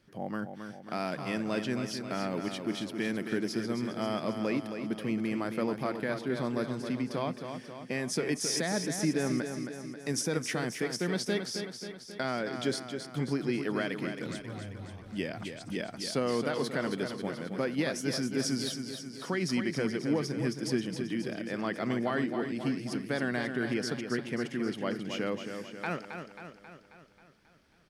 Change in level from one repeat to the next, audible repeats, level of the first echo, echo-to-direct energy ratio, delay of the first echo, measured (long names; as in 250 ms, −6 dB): −4.5 dB, 6, −7.5 dB, −5.5 dB, 269 ms